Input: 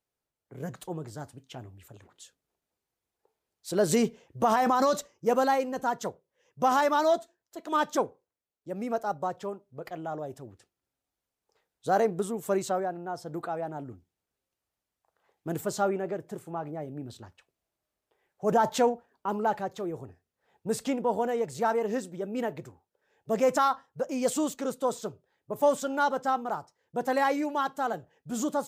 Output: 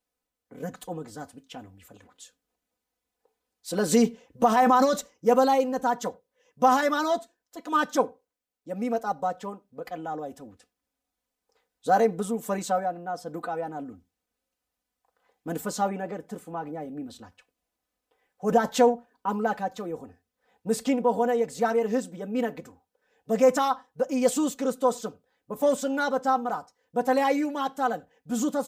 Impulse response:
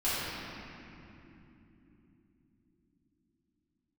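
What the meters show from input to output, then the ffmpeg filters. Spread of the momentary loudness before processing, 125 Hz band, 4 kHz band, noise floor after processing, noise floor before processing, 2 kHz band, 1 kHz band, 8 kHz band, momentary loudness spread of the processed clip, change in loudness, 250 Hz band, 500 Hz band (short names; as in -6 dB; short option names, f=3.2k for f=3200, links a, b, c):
16 LU, 0.0 dB, +2.5 dB, -85 dBFS, under -85 dBFS, +2.5 dB, +2.5 dB, +2.5 dB, 17 LU, +3.0 dB, +4.5 dB, +2.5 dB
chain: -filter_complex "[0:a]aecho=1:1:4:0.81,asplit=2[a][b];[1:a]atrim=start_sample=2205,atrim=end_sample=4410[c];[b][c]afir=irnorm=-1:irlink=0,volume=-30.5dB[d];[a][d]amix=inputs=2:normalize=0"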